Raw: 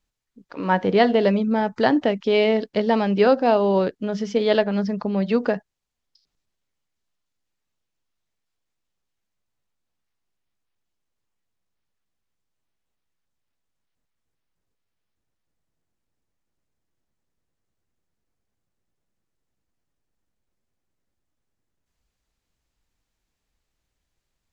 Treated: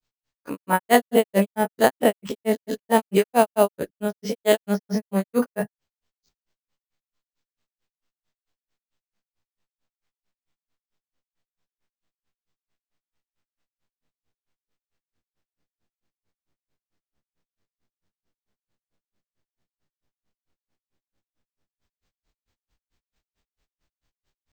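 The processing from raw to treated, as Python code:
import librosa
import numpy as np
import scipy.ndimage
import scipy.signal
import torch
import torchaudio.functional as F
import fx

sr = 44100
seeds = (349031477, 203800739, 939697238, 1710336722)

y = fx.spec_dilate(x, sr, span_ms=60)
y = fx.transient(y, sr, attack_db=-3, sustain_db=1)
y = fx.granulator(y, sr, seeds[0], grain_ms=131.0, per_s=4.5, spray_ms=100.0, spread_st=0)
y = np.repeat(y[::4], 4)[:len(y)]
y = y * 10.0 ** (1.5 / 20.0)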